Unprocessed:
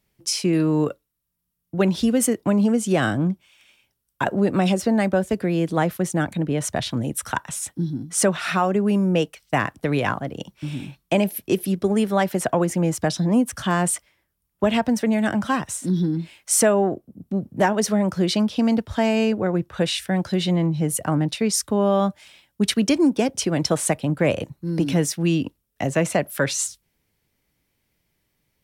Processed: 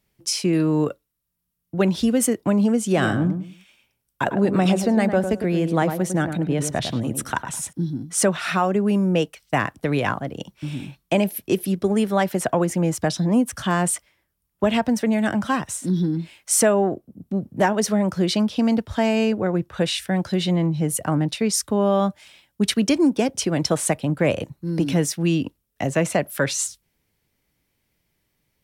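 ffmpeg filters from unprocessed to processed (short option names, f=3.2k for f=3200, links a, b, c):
-filter_complex "[0:a]asettb=1/sr,asplit=3[a][b][c];[a]atrim=end=2.854[d];[b]atrim=start=2.85:end=7.73,asetpts=PTS-STARTPTS,afade=t=in:d=0.004:c=qsin,afade=t=out:st=4.876:d=0.004:c=qsin,asplit=2[e][f];[f]adelay=103,lowpass=f=1.3k:p=1,volume=-7dB,asplit=2[g][h];[h]adelay=103,lowpass=f=1.3k:p=1,volume=0.25,asplit=2[i][j];[j]adelay=103,lowpass=f=1.3k:p=1,volume=0.25[k];[e][g][i][k]amix=inputs=4:normalize=0,atrim=end_sample=215208[l];[c]atrim=start=7.726[m];[d][l]acrossfade=d=0.004:c1=hsin:c2=qsin[n];[n][m]acrossfade=d=0.004:c1=qsin:c2=hsin"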